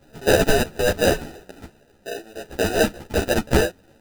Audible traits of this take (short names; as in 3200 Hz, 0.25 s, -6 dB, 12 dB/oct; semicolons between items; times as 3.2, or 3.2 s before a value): tremolo saw down 0.85 Hz, depth 55%; aliases and images of a low sample rate 1100 Hz, jitter 0%; a shimmering, thickened sound